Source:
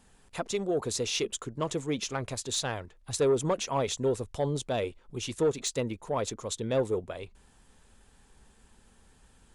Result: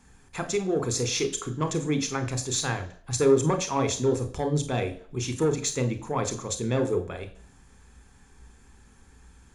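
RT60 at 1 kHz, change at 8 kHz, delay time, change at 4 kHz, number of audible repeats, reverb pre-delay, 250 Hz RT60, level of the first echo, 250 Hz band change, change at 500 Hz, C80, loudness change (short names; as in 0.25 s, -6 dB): 0.55 s, +5.0 dB, none, +1.5 dB, none, 29 ms, 0.55 s, none, +6.0 dB, +3.0 dB, 16.5 dB, +4.0 dB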